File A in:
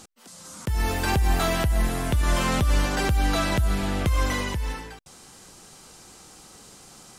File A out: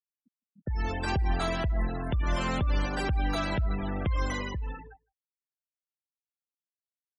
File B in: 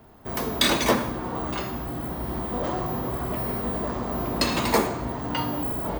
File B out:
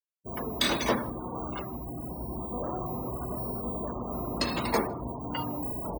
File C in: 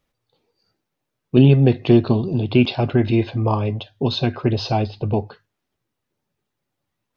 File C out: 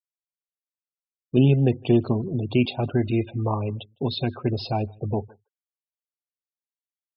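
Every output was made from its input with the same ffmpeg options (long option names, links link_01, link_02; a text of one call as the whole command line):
ffmpeg -i in.wav -filter_complex "[0:a]afftfilt=real='re*gte(hypot(re,im),0.0398)':imag='im*gte(hypot(re,im),0.0398)':win_size=1024:overlap=0.75,asplit=2[link_01][link_02];[link_02]adelay=157.4,volume=-29dB,highshelf=frequency=4000:gain=-3.54[link_03];[link_01][link_03]amix=inputs=2:normalize=0,volume=-5.5dB" out.wav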